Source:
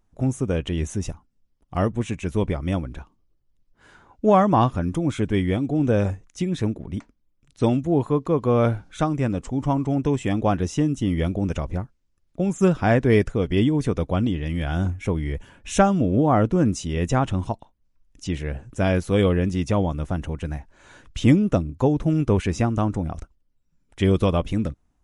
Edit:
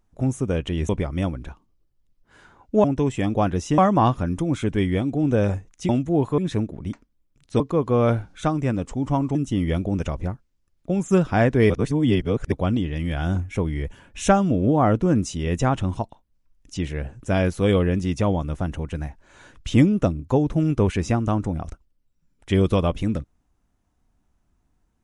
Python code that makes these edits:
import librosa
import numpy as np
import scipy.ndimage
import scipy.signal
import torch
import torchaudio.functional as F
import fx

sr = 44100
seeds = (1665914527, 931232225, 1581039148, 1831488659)

y = fx.edit(x, sr, fx.cut(start_s=0.89, length_s=1.5),
    fx.move(start_s=7.67, length_s=0.49, to_s=6.45),
    fx.move(start_s=9.91, length_s=0.94, to_s=4.34),
    fx.reverse_span(start_s=13.2, length_s=0.82), tone=tone)